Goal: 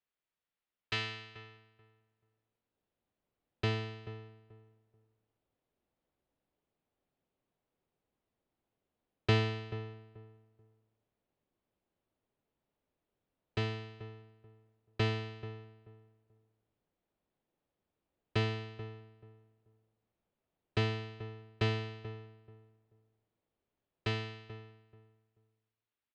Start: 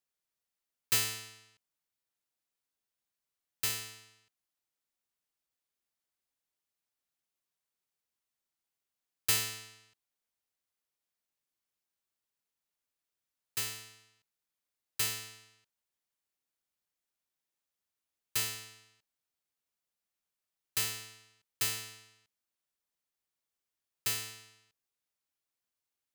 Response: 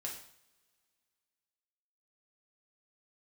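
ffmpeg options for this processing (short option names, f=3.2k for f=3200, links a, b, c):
-filter_complex "[0:a]lowpass=f=3.6k:w=0.5412,lowpass=f=3.6k:w=1.3066,acrossover=split=740[a][b];[a]dynaudnorm=f=440:g=11:m=16dB[c];[c][b]amix=inputs=2:normalize=0,asplit=2[d][e];[e]adelay=434,lowpass=f=1.1k:p=1,volume=-12.5dB,asplit=2[f][g];[g]adelay=434,lowpass=f=1.1k:p=1,volume=0.23,asplit=2[h][i];[i]adelay=434,lowpass=f=1.1k:p=1,volume=0.23[j];[d][f][h][j]amix=inputs=4:normalize=0"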